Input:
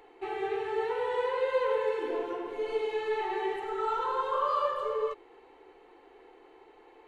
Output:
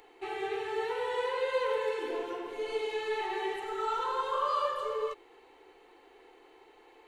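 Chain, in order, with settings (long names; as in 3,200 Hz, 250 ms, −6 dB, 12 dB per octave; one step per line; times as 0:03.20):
high-shelf EQ 2,700 Hz +11 dB
level −3 dB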